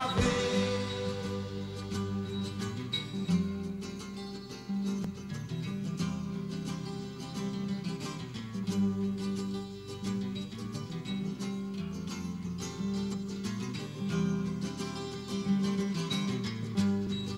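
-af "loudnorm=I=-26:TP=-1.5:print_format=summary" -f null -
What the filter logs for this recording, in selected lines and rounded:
Input Integrated:    -34.4 LUFS
Input True Peak:     -14.0 dBTP
Input LRA:             3.8 LU
Input Threshold:     -44.4 LUFS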